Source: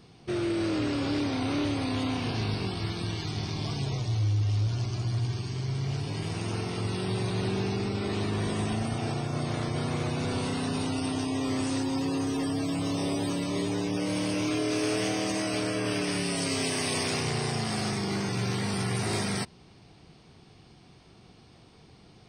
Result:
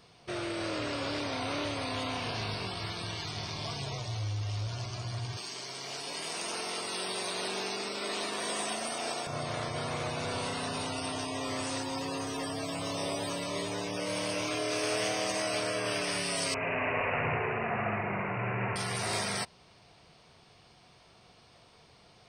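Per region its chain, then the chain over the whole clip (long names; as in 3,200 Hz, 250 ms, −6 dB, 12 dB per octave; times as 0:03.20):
0:05.37–0:09.27: high-pass filter 220 Hz 24 dB per octave + high-shelf EQ 4,900 Hz +10 dB
0:16.54–0:18.76: high-frequency loss of the air 110 metres + flutter between parallel walls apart 11.4 metres, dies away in 1.2 s + bad sample-rate conversion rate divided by 8×, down none, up filtered
whole clip: low shelf with overshoot 440 Hz −8 dB, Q 1.5; notch filter 790 Hz, Q 12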